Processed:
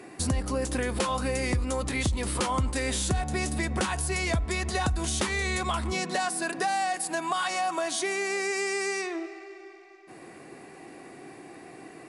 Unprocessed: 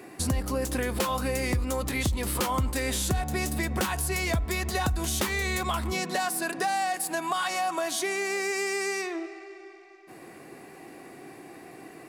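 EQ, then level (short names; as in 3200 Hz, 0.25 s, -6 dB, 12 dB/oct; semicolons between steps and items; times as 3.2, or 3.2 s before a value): brick-wall FIR low-pass 11000 Hz; 0.0 dB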